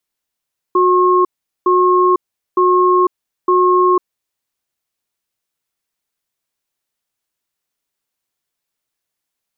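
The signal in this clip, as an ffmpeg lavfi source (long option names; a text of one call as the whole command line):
ffmpeg -f lavfi -i "aevalsrc='0.266*(sin(2*PI*364*t)+sin(2*PI*1080*t))*clip(min(mod(t,0.91),0.5-mod(t,0.91))/0.005,0,1)':duration=3.32:sample_rate=44100" out.wav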